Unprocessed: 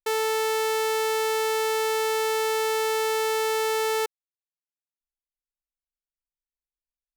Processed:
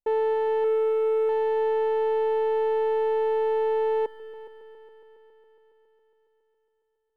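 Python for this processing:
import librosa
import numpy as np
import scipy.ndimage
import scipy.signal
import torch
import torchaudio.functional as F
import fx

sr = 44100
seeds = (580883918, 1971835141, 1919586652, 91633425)

p1 = fx.envelope_sharpen(x, sr, power=2.0, at=(0.64, 1.29))
p2 = 10.0 ** (-34.0 / 20.0) * np.tanh(p1 / 10.0 ** (-34.0 / 20.0))
p3 = p1 + (p2 * 10.0 ** (-3.0 / 20.0))
p4 = scipy.signal.sosfilt(scipy.signal.ellip(4, 1.0, 40, 980.0, 'lowpass', fs=sr, output='sos'), p3)
p5 = fx.leveller(p4, sr, passes=1)
y = fx.echo_heads(p5, sr, ms=138, heads='all three', feedback_pct=65, wet_db=-18.5)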